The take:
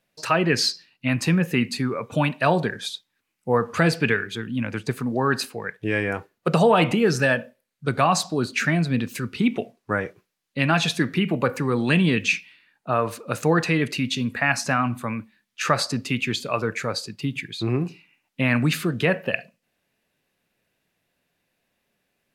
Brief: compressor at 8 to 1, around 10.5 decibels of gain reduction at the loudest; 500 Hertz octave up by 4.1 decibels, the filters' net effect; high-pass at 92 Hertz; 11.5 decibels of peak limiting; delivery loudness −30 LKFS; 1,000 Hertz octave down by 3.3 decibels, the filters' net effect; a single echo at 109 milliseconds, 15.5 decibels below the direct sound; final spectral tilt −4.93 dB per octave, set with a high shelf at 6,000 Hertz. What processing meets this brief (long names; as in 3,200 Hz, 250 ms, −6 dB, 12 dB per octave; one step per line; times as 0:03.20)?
high-pass filter 92 Hz
parametric band 500 Hz +6.5 dB
parametric band 1,000 Hz −7 dB
high-shelf EQ 6,000 Hz −4.5 dB
downward compressor 8 to 1, threshold −21 dBFS
brickwall limiter −21.5 dBFS
single-tap delay 109 ms −15.5 dB
level +1.5 dB